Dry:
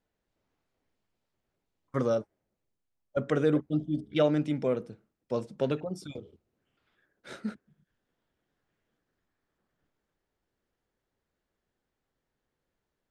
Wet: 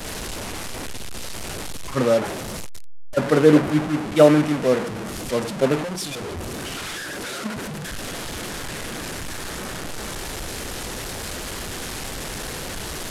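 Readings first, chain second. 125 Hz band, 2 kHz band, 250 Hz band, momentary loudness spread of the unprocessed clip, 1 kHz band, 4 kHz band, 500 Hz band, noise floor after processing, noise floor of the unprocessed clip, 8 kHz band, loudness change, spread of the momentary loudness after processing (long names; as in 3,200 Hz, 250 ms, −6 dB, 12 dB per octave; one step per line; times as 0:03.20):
+9.0 dB, +17.0 dB, +10.5 dB, 14 LU, +14.0 dB, +18.5 dB, +11.0 dB, −32 dBFS, −85 dBFS, can't be measured, +6.5 dB, 16 LU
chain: linear delta modulator 64 kbit/s, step −26.5 dBFS
multiband upward and downward expander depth 100%
level +3.5 dB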